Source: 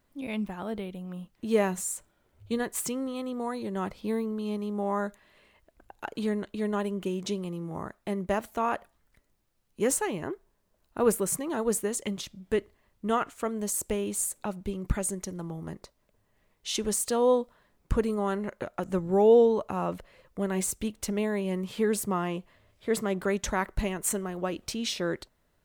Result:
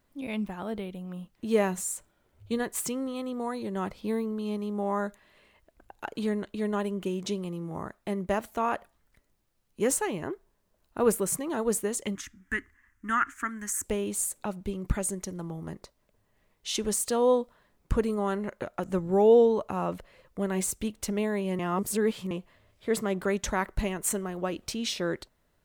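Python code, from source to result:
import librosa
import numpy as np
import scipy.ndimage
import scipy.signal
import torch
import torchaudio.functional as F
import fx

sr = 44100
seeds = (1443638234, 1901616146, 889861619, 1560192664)

y = fx.curve_eq(x, sr, hz=(100.0, 160.0, 270.0, 510.0, 1100.0, 1700.0, 2500.0, 4100.0, 6400.0, 11000.0), db=(0, -17, 3, -25, 0, 14, -1, -12, 2, -3), at=(12.15, 13.84))
y = fx.edit(y, sr, fx.reverse_span(start_s=21.59, length_s=0.72), tone=tone)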